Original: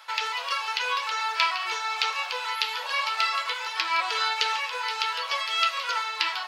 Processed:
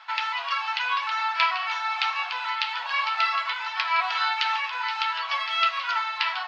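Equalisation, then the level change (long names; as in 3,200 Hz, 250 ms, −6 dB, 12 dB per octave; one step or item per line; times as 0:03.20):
elliptic high-pass filter 690 Hz, stop band 60 dB
high-frequency loss of the air 200 metres
+4.0 dB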